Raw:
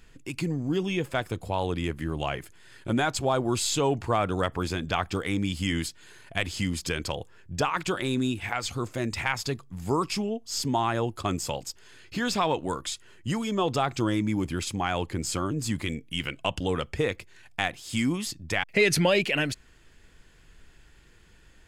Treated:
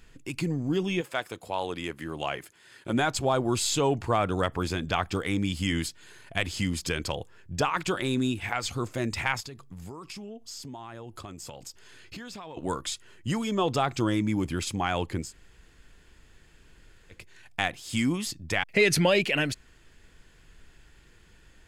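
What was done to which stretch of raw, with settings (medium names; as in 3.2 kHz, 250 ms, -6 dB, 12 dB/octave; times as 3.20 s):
1.00–2.93 s: high-pass 710 Hz -> 210 Hz 6 dB/octave
9.40–12.57 s: compression 16:1, threshold -37 dBFS
15.25–17.17 s: room tone, crossfade 0.16 s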